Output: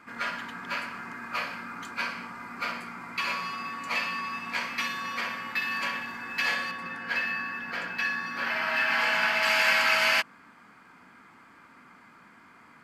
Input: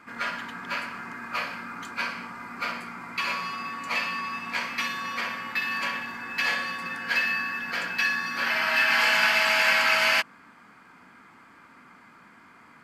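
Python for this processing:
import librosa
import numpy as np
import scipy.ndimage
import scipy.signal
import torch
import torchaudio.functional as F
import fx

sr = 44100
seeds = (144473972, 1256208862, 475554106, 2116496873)

y = fx.high_shelf(x, sr, hz=3200.0, db=-9.0, at=(6.71, 9.43))
y = y * 10.0 ** (-1.5 / 20.0)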